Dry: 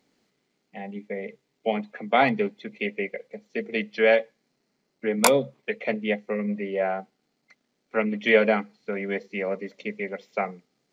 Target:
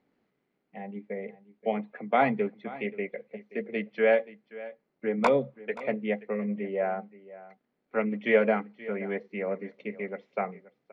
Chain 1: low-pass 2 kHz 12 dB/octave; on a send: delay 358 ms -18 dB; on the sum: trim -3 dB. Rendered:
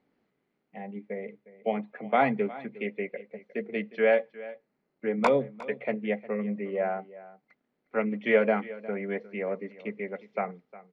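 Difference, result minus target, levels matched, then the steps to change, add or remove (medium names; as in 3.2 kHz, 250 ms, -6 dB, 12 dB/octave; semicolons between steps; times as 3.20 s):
echo 170 ms early
change: delay 528 ms -18 dB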